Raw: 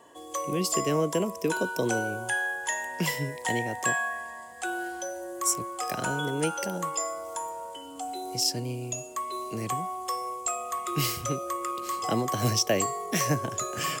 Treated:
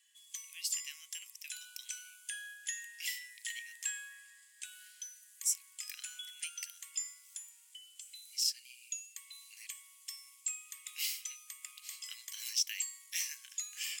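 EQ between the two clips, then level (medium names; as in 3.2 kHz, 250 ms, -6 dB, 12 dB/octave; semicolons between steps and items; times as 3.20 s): steep high-pass 2.1 kHz 36 dB/octave; -5.5 dB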